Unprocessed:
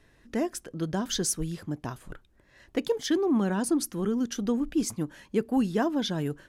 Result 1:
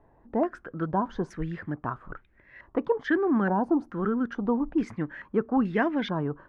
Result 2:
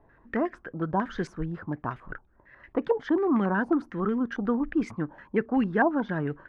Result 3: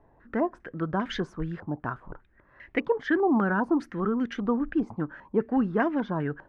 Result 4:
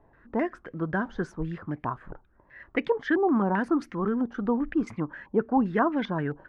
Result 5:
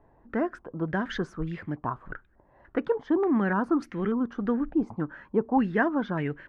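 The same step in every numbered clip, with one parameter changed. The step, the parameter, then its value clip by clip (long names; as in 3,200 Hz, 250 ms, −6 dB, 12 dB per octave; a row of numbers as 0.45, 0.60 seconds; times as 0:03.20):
low-pass on a step sequencer, speed: 2.3, 11, 5, 7.6, 3.4 Hertz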